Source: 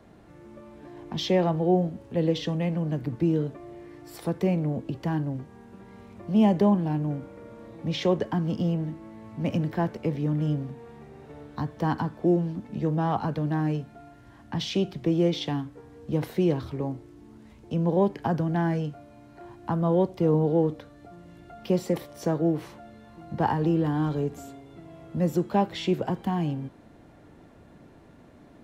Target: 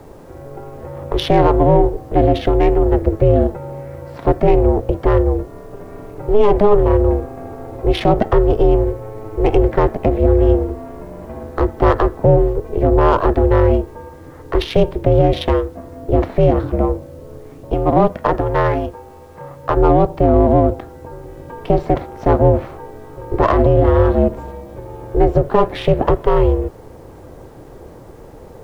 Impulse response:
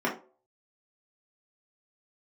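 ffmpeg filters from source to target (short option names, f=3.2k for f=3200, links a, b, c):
-filter_complex "[0:a]adynamicsmooth=sensitivity=2:basefreq=1.5k,asettb=1/sr,asplit=3[a][b][c];[a]atrim=end=17.744[d];[b]atrim=start=17.74:end=19.77,asetpts=PTS-STARTPTS,afade=t=in:d=0.004:c=qsin,afade=t=out:st=2.026:d=0.004:c=qsin,equalizer=f=140:t=o:w=1.5:g=-11[e];[c]atrim=start=19.766[f];[d][e]acrossfade=d=0.004:c1=hsin:c2=qsin[g];[g][f]acrossfade=d=0.004:c1=qsin:c2=hsin,aeval=exprs='val(0)*sin(2*PI*210*n/s)':c=same,acrusher=bits=11:mix=0:aa=0.000001,alimiter=level_in=18.5dB:limit=-1dB:release=50:level=0:latency=1,volume=-1dB"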